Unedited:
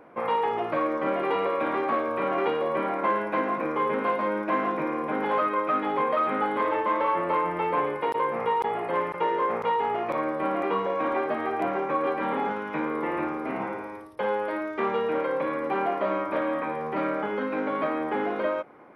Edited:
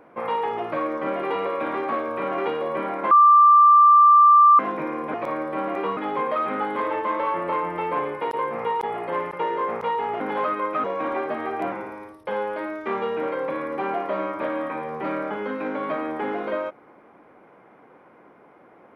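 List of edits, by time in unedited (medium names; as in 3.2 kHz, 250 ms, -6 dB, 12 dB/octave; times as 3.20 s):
3.11–4.59 s: bleep 1.18 kHz -9.5 dBFS
5.14–5.78 s: swap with 10.01–10.84 s
11.72–13.64 s: delete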